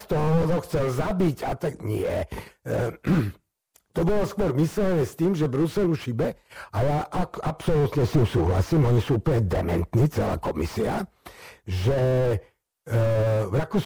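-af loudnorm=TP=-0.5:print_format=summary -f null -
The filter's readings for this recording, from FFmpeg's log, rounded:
Input Integrated:    -24.8 LUFS
Input True Peak:      -8.4 dBTP
Input LRA:             2.7 LU
Input Threshold:     -35.3 LUFS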